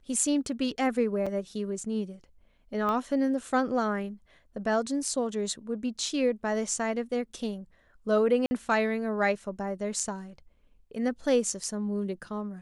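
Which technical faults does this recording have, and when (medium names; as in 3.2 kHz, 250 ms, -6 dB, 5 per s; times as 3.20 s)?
1.26–1.27 s: dropout 5.4 ms
2.89 s: pop -20 dBFS
8.46–8.51 s: dropout 50 ms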